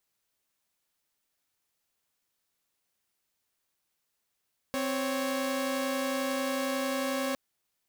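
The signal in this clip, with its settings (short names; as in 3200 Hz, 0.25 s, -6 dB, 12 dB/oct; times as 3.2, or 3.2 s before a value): chord C4/C#5 saw, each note -29 dBFS 2.61 s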